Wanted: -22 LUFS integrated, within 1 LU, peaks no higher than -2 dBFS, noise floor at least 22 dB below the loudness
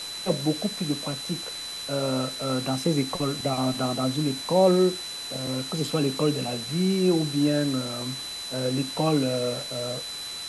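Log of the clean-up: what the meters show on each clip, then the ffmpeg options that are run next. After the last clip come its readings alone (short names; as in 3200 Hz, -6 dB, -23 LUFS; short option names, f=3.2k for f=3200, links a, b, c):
steady tone 4000 Hz; tone level -34 dBFS; noise floor -36 dBFS; noise floor target -48 dBFS; loudness -26.0 LUFS; peak -8.0 dBFS; loudness target -22.0 LUFS
-> -af "bandreject=f=4k:w=30"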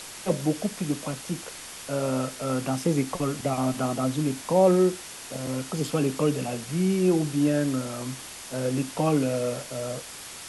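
steady tone none; noise floor -41 dBFS; noise floor target -49 dBFS
-> -af "afftdn=nr=8:nf=-41"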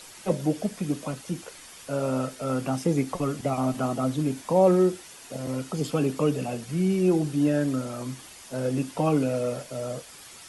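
noise floor -47 dBFS; noise floor target -49 dBFS
-> -af "afftdn=nr=6:nf=-47"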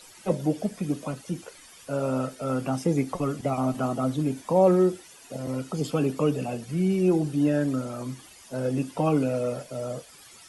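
noise floor -50 dBFS; loudness -27.0 LUFS; peak -8.5 dBFS; loudness target -22.0 LUFS
-> -af "volume=5dB"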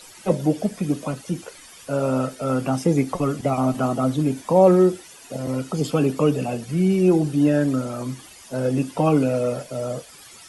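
loudness -22.0 LUFS; peak -3.5 dBFS; noise floor -45 dBFS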